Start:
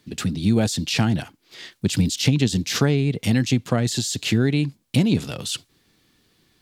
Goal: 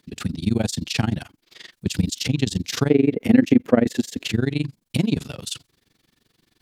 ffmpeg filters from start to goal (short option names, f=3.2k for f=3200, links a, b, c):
-filter_complex "[0:a]asettb=1/sr,asplit=3[a][b][c];[a]atrim=end=2.904[d];[b]atrim=start=2.9:end=4.25,asetpts=PTS-STARTPTS,afade=t=in:d=0.004:c=qsin,afade=t=out:st=1.346:d=0.004:c=qsin,equalizer=f=125:t=o:w=1:g=-8,equalizer=f=250:t=o:w=1:g=10,equalizer=f=500:t=o:w=1:g=9,equalizer=f=2k:t=o:w=1:g=6,equalizer=f=4k:t=o:w=1:g=-8,equalizer=f=8k:t=o:w=1:g=-8[e];[c]atrim=start=4.246[f];[d][e]acrossfade=d=0.004:c1=hsin:c2=qsin[g];[g][f]acrossfade=d=0.004:c1=qsin:c2=hsin,tremolo=f=23:d=0.947,volume=1dB"